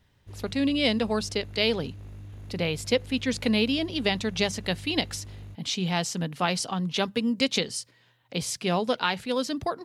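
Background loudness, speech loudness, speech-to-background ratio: -44.0 LUFS, -27.5 LUFS, 16.5 dB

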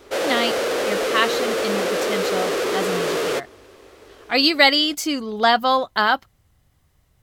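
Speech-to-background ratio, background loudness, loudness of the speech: 2.0 dB, -22.5 LUFS, -20.5 LUFS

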